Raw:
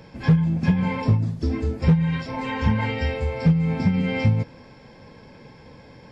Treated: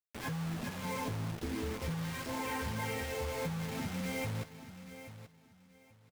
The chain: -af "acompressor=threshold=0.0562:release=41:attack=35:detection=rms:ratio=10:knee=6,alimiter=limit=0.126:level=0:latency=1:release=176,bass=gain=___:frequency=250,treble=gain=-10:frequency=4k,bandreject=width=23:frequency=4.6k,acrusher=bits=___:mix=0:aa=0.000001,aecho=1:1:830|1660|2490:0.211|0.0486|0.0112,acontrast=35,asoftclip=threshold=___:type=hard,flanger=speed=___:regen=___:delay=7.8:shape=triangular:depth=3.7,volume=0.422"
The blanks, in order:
-6, 5, 0.1, 1.3, -52